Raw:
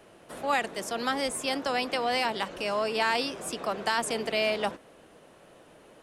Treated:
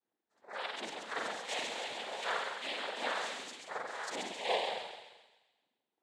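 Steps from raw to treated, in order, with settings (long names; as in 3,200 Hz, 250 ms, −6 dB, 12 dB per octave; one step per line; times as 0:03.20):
spectral dynamics exaggerated over time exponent 2
high-pass filter 740 Hz 12 dB per octave
reversed playback
downward compressor, threshold −40 dBFS, peak gain reduction 13.5 dB
reversed playback
square-wave tremolo 2.7 Hz, depth 60%, duty 20%
spring reverb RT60 1.1 s, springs 43 ms, chirp 35 ms, DRR −7.5 dB
cochlear-implant simulation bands 6
on a send: delay with a high-pass on its return 134 ms, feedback 47%, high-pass 2,500 Hz, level −5 dB
on the sum: level +2.5 dB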